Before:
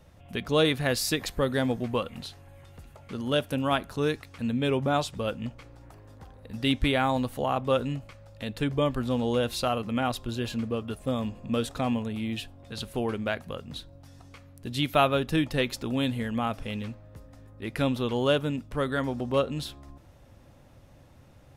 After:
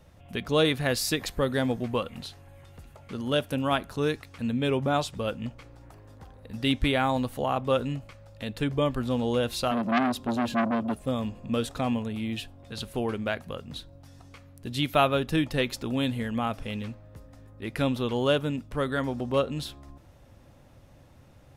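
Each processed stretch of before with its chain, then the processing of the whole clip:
0:09.71–0:10.99: high-pass filter 51 Hz + parametric band 240 Hz +13 dB 0.64 octaves + saturating transformer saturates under 1,600 Hz
whole clip: no processing

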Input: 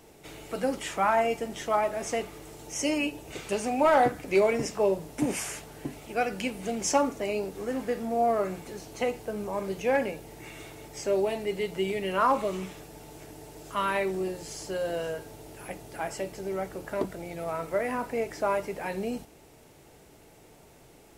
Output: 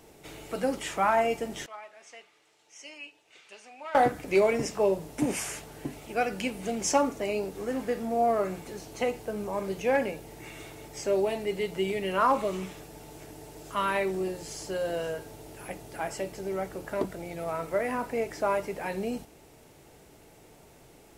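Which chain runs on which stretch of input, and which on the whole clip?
0:01.66–0:03.95: low-pass filter 2,900 Hz + first difference
whole clip: no processing

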